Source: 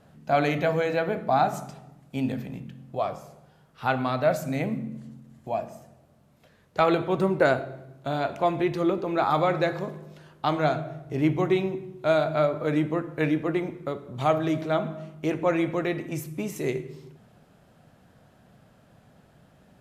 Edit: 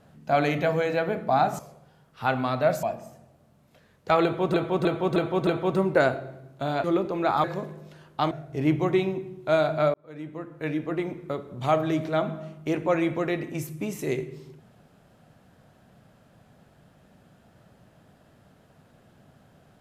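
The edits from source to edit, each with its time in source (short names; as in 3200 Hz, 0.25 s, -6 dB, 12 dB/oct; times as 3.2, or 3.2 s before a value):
1.59–3.2 cut
4.44–5.52 cut
6.92–7.23 loop, 5 plays
8.29–8.77 cut
9.37–9.69 cut
10.56–10.88 cut
12.51–13.84 fade in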